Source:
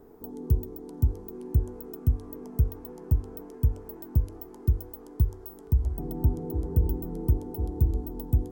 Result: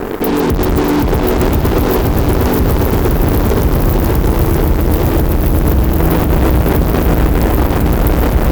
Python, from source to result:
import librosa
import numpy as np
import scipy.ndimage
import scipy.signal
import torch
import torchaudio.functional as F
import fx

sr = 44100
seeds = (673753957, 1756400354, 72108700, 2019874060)

y = fx.reverse_delay_fb(x, sr, ms=320, feedback_pct=82, wet_db=-7.0)
y = fx.vibrato(y, sr, rate_hz=3.8, depth_cents=5.9)
y = fx.over_compress(y, sr, threshold_db=-24.0, ratio=-0.5)
y = fx.fuzz(y, sr, gain_db=47.0, gate_db=-52.0)
y = fx.hum_notches(y, sr, base_hz=50, count=5)
y = fx.echo_swell(y, sr, ms=151, loudest=5, wet_db=-14.0)
y = fx.doppler_dist(y, sr, depth_ms=0.43)
y = y * librosa.db_to_amplitude(3.0)